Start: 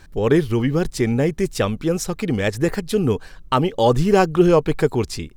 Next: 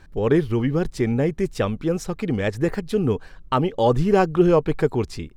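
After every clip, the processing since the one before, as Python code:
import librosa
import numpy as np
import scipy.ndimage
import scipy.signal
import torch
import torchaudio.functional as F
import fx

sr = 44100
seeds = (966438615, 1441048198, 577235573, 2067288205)

y = fx.high_shelf(x, sr, hz=3900.0, db=-9.5)
y = y * librosa.db_to_amplitude(-2.0)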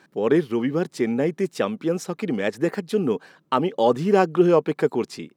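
y = scipy.signal.sosfilt(scipy.signal.butter(4, 180.0, 'highpass', fs=sr, output='sos'), x)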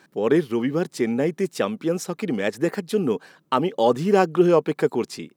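y = fx.high_shelf(x, sr, hz=6300.0, db=6.0)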